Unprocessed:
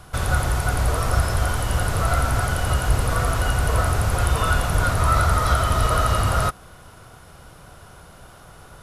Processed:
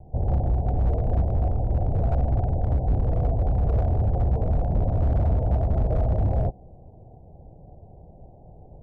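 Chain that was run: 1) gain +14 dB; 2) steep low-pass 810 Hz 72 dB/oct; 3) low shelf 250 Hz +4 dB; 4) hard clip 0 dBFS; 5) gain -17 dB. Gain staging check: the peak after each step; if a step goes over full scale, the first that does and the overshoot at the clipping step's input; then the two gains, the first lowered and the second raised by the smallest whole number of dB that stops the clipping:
+9.0, +6.0, +9.5, 0.0, -17.0 dBFS; step 1, 9.5 dB; step 1 +4 dB, step 5 -7 dB

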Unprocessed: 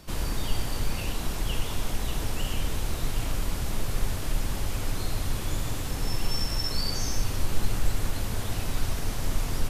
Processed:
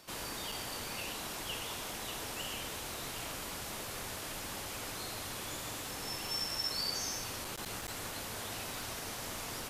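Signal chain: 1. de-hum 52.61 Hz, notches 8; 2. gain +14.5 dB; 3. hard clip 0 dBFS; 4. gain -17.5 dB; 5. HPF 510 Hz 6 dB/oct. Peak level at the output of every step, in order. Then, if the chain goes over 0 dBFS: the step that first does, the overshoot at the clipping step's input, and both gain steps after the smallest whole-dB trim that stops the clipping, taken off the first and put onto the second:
-10.5, +4.0, 0.0, -17.5, -24.0 dBFS; step 2, 4.0 dB; step 2 +10.5 dB, step 4 -13.5 dB

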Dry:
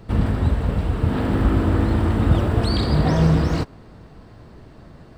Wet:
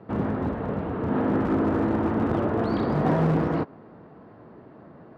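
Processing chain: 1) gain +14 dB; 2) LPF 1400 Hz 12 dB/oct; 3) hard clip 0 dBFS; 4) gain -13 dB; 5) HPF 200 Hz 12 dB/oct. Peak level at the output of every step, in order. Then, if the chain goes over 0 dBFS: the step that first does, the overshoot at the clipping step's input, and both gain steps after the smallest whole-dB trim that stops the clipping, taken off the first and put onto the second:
+9.0, +9.0, 0.0, -13.0, -10.5 dBFS; step 1, 9.0 dB; step 1 +5 dB, step 4 -4 dB

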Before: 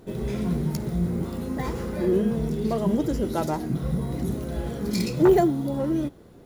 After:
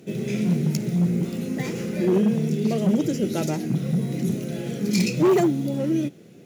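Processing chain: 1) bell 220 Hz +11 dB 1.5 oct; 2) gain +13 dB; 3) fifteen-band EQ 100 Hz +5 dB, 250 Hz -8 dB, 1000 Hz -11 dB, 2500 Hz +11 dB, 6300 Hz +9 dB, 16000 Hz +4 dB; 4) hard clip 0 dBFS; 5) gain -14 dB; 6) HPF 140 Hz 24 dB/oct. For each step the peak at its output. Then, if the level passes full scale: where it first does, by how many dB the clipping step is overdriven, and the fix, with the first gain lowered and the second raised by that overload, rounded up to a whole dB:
-2.0, +11.0, +8.5, 0.0, -14.0, -8.5 dBFS; step 2, 8.5 dB; step 2 +4 dB, step 5 -5 dB

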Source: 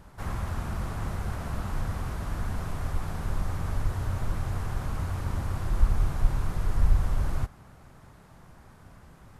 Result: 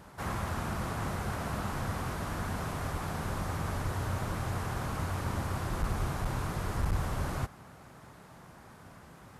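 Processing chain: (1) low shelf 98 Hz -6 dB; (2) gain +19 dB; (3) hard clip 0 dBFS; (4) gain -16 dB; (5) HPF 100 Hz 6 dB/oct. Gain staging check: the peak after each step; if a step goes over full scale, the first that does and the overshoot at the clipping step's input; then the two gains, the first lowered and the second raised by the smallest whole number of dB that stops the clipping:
-13.0, +6.0, 0.0, -16.0, -17.5 dBFS; step 2, 6.0 dB; step 2 +13 dB, step 4 -10 dB

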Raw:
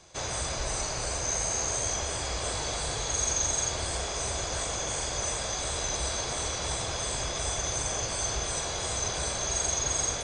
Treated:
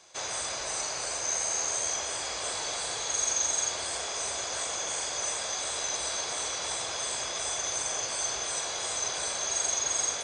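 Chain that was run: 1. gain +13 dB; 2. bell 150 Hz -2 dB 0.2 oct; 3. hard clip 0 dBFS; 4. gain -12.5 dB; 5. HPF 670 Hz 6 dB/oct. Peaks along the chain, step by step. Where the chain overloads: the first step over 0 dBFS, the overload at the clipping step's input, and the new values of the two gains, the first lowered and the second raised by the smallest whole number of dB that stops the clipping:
-3.5, -3.5, -3.5, -16.0, -15.5 dBFS; no overload

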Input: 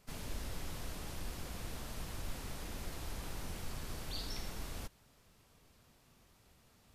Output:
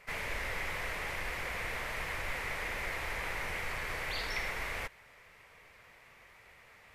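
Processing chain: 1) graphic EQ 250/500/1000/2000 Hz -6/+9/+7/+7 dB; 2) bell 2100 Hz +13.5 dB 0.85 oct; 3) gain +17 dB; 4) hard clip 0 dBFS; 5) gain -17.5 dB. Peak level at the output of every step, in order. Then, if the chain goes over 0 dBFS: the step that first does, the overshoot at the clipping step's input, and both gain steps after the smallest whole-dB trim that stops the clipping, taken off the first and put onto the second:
-26.5, -22.5, -5.5, -5.5, -23.0 dBFS; no overload

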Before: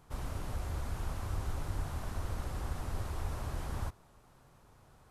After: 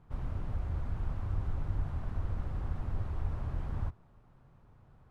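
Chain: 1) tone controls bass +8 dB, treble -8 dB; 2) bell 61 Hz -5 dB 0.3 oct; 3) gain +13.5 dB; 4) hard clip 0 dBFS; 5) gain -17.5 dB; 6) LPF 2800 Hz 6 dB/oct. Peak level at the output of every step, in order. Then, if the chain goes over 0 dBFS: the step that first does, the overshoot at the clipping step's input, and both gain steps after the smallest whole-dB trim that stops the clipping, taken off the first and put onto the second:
-16.5, -17.0, -3.5, -3.5, -21.0, -21.0 dBFS; no overload

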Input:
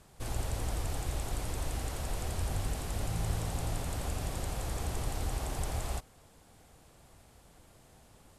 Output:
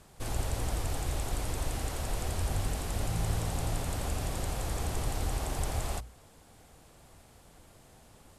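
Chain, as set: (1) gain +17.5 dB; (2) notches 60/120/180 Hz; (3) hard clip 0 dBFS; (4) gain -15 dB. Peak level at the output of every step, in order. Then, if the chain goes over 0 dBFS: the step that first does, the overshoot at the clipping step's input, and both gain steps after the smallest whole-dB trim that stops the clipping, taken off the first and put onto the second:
-2.5, -3.0, -3.0, -18.0 dBFS; no overload

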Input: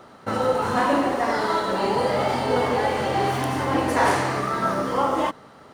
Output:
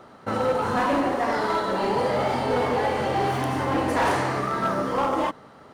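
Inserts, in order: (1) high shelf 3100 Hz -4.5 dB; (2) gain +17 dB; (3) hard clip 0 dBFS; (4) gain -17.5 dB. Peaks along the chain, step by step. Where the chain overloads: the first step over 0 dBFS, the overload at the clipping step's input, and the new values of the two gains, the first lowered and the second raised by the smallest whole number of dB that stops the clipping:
-8.5, +8.5, 0.0, -17.5 dBFS; step 2, 8.5 dB; step 2 +8 dB, step 4 -8.5 dB

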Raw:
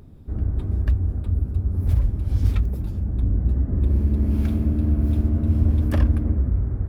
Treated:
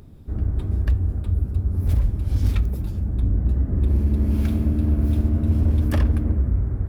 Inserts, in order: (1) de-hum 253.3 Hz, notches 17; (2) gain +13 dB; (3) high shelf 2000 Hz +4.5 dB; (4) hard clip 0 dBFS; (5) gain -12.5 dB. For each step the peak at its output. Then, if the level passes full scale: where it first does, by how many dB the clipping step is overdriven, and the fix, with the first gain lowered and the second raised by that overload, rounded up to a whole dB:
-6.5, +6.5, +6.5, 0.0, -12.5 dBFS; step 2, 6.5 dB; step 2 +6 dB, step 5 -5.5 dB

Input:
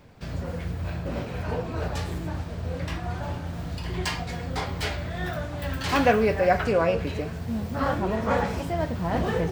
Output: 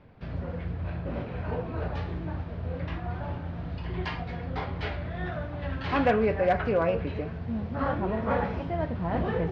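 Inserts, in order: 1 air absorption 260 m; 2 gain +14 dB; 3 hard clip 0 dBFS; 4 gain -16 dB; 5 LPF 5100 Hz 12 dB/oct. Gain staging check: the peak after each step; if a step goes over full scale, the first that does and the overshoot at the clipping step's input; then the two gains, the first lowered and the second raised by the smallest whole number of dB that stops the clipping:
-9.0, +5.0, 0.0, -16.0, -15.5 dBFS; step 2, 5.0 dB; step 2 +9 dB, step 4 -11 dB

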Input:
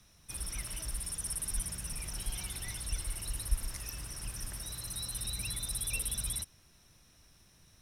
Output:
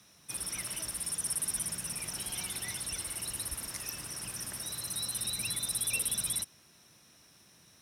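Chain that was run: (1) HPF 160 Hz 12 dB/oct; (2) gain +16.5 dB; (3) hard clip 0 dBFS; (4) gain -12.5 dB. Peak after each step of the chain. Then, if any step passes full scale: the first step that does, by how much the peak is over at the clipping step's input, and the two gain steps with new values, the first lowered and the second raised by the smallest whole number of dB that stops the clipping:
-20.0, -3.5, -3.5, -16.0 dBFS; no overload

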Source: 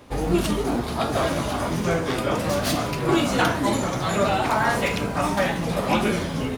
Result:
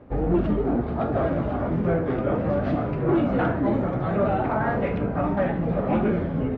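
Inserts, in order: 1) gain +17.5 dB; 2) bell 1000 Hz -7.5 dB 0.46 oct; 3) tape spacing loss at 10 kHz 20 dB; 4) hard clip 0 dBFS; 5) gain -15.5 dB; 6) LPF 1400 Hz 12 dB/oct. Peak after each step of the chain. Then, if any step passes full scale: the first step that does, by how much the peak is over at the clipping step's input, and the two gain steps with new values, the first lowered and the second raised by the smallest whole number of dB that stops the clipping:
+10.0, +9.5, +8.0, 0.0, -15.5, -15.0 dBFS; step 1, 8.0 dB; step 1 +9.5 dB, step 5 -7.5 dB

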